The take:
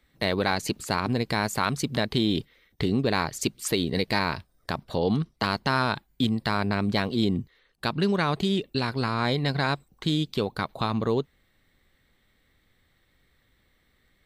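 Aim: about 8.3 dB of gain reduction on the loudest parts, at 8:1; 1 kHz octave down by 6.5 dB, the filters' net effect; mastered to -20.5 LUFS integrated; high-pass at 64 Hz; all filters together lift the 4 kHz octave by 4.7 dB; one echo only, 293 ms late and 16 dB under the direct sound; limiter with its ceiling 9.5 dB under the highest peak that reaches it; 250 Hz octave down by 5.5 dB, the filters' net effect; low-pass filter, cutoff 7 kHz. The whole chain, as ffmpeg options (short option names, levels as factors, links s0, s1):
-af "highpass=64,lowpass=7000,equalizer=f=250:t=o:g=-7,equalizer=f=1000:t=o:g=-8.5,equalizer=f=4000:t=o:g=6,acompressor=threshold=0.0316:ratio=8,alimiter=limit=0.0668:level=0:latency=1,aecho=1:1:293:0.158,volume=6.68"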